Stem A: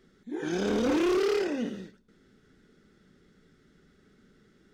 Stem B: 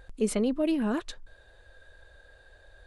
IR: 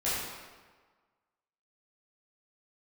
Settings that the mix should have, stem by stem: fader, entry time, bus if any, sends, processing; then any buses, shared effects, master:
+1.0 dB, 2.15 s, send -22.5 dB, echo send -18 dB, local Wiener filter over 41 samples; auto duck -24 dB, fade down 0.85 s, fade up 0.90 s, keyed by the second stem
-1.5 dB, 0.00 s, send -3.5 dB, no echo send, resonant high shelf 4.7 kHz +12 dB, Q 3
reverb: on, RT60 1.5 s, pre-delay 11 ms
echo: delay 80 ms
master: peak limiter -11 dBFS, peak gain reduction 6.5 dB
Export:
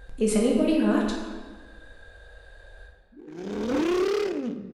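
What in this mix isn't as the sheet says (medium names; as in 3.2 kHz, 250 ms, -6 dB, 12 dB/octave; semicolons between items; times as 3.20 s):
stem A: entry 2.15 s -> 2.85 s; stem B: missing resonant high shelf 4.7 kHz +12 dB, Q 3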